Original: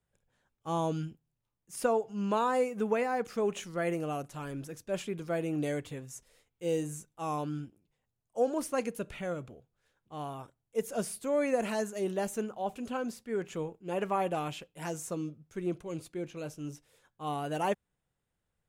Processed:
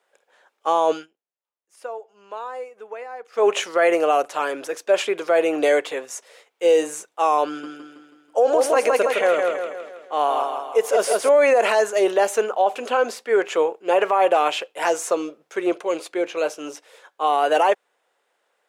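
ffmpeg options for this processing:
-filter_complex "[0:a]asettb=1/sr,asplit=3[a][b][c];[a]atrim=end=7.474[d];[b]atrim=start=7.47:end=11.29,asetpts=PTS-STARTPTS,afade=t=in:d=0.004:c=qsin,afade=t=out:st=3.816:d=0.004:c=qsin,aecho=1:1:162|324|486|648|810|972:0.562|0.276|0.135|0.0662|0.0324|0.0159,atrim=end_sample=168462[e];[c]atrim=start=11.286[f];[d][e]acrossfade=d=0.004:c1=hsin:c2=qsin[g];[g][f]acrossfade=d=0.004:c1=qsin:c2=hsin,asplit=3[h][i][j];[h]atrim=end=1.07,asetpts=PTS-STARTPTS,afade=t=out:st=0.9:d=0.17:silence=0.0707946[k];[i]atrim=start=1.07:end=3.32,asetpts=PTS-STARTPTS,volume=-23dB[l];[j]atrim=start=3.32,asetpts=PTS-STARTPTS,afade=t=in:d=0.17:silence=0.0707946[m];[k][l][m]concat=n=3:v=0:a=1,highpass=f=450:w=0.5412,highpass=f=450:w=1.3066,aemphasis=mode=reproduction:type=50kf,alimiter=level_in=28.5dB:limit=-1dB:release=50:level=0:latency=1,volume=-8dB"

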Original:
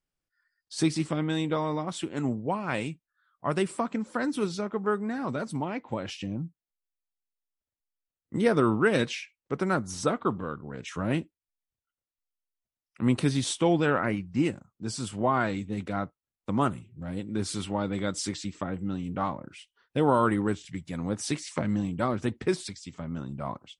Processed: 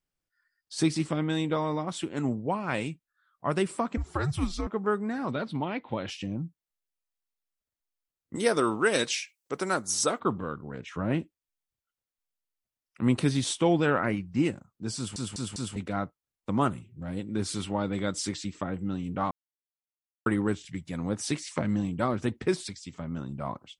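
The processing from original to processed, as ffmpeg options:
-filter_complex "[0:a]asettb=1/sr,asplit=3[a][b][c];[a]atrim=end=3.974[d];[b]atrim=start=3.97:end=4.67,asetpts=PTS-STARTPTS,afade=t=in:d=0.004:c=qsin,afade=t=out:st=0.696:d=0.004:c=qsin,afreqshift=-150[e];[c]atrim=start=4.666[f];[d][e]acrossfade=d=0.004:c1=hsin:c2=qsin[g];[g][f]acrossfade=d=0.004:c1=qsin:c2=hsin,asettb=1/sr,asplit=3[h][i][j];[h]atrim=end=5.314[k];[i]atrim=start=5.31:end=6.08,asetpts=PTS-STARTPTS,afade=t=in:d=0.004:c=qsin,afade=t=out:st=0.766:d=0.004:c=qsin,highshelf=f=5.1k:t=q:w=3:g=-11.5[l];[j]atrim=start=6.076[m];[k][l]acrossfade=d=0.004:c1=hsin:c2=qsin[n];[n][m]acrossfade=d=0.004:c1=qsin:c2=hsin,asettb=1/sr,asplit=3[o][p][q];[o]atrim=end=8.354[r];[p]atrim=start=8.35:end=10.2,asetpts=PTS-STARTPTS,afade=t=in:d=0.004:c=qsin,afade=t=out:st=1.846:d=0.004:c=qsin,bass=f=250:g=-11,treble=f=4k:g=12[s];[q]atrim=start=10.196[t];[r][s]acrossfade=d=0.004:c1=hsin:c2=qsin[u];[u][t]acrossfade=d=0.004:c1=qsin:c2=hsin,asettb=1/sr,asplit=3[v][w][x];[v]atrim=end=10.784[y];[w]atrim=start=10.78:end=11.2,asetpts=PTS-STARTPTS,afade=t=in:d=0.004:c=qsin,afade=t=out:st=0.416:d=0.004:c=qsin,lowpass=f=2.3k:p=1[z];[x]atrim=start=11.196[aa];[y][z]acrossfade=d=0.004:c1=hsin:c2=qsin[ab];[ab][aa]acrossfade=d=0.004:c1=qsin:c2=hsin,asplit=7[ac][ad][ae][af][ag][ah][ai];[ac]atrim=end=15.162[aj];[ad]atrim=start=14.958:end=15.162[ak];[ae]atrim=start=14.958:end=15.162[al];[af]atrim=start=14.958:end=15.162[am];[ag]atrim=start=15.758:end=19.31,asetpts=PTS-STARTPTS,afade=t=out:st=3.548:d=0.004:c=hsin[an];[ah]atrim=start=19.31:end=20.26,asetpts=PTS-STARTPTS,volume=0[ao];[ai]atrim=start=20.26,asetpts=PTS-STARTPTS,afade=t=in:d=0.004:c=hsin[ap];[aj][ak]acrossfade=d=0.004:c1=hsin:c2=hsin[aq];[aq][al]acrossfade=d=0.004:c1=hsin:c2=hsin[ar];[ar][am]acrossfade=d=0.004:c1=hsin:c2=hsin[as];[an][ao][ap]concat=n=3:v=0:a=1[at];[as][at]acrossfade=d=0.004:c1=hsin:c2=hsin"

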